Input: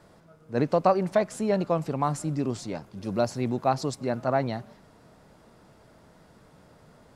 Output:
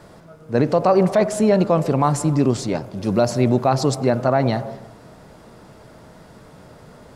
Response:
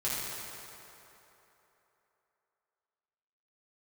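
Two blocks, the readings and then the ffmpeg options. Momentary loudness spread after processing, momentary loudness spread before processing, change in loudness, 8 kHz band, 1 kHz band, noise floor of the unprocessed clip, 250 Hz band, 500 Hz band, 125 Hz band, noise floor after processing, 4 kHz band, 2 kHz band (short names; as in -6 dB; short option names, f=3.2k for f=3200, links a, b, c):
8 LU, 10 LU, +8.5 dB, +10.0 dB, +6.0 dB, -56 dBFS, +9.5 dB, +8.0 dB, +10.5 dB, -46 dBFS, +9.0 dB, +7.0 dB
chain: -filter_complex "[0:a]asplit=2[a][b];[b]equalizer=f=550:t=o:w=0.59:g=7.5[c];[1:a]atrim=start_sample=2205,afade=t=out:st=0.41:d=0.01,atrim=end_sample=18522,lowpass=1.3k[d];[c][d]afir=irnorm=-1:irlink=0,volume=-21dB[e];[a][e]amix=inputs=2:normalize=0,alimiter=level_in=15dB:limit=-1dB:release=50:level=0:latency=1,volume=-5dB"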